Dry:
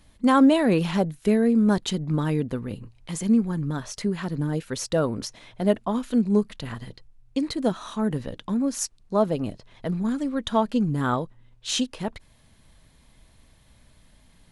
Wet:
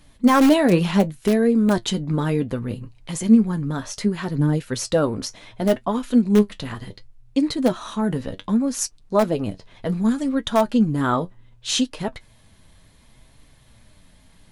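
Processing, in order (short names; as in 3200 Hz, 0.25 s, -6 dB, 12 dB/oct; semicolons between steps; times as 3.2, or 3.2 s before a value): 9.88–10.29 high shelf 5400 Hz +6.5 dB; in parallel at -12 dB: wrapped overs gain 11 dB; on the sum: flange 0.67 Hz, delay 6.5 ms, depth 5.1 ms, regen +54%; gain +6 dB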